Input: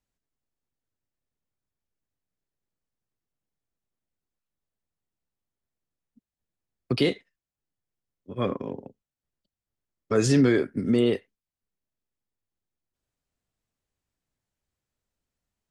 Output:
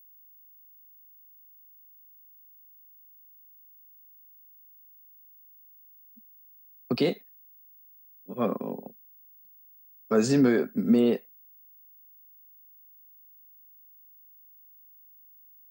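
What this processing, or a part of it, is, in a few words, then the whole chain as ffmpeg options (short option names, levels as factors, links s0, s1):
old television with a line whistle: -af "highpass=f=160:w=0.5412,highpass=f=160:w=1.3066,equalizer=f=220:t=q:w=4:g=5,equalizer=f=320:t=q:w=4:g=-6,equalizer=f=730:t=q:w=4:g=4,equalizer=f=2000:t=q:w=4:g=-7,equalizer=f=3200:t=q:w=4:g=-9,equalizer=f=5800:t=q:w=4:g=-5,lowpass=f=7800:w=0.5412,lowpass=f=7800:w=1.3066,aeval=exprs='val(0)+0.00251*sin(2*PI*15625*n/s)':c=same"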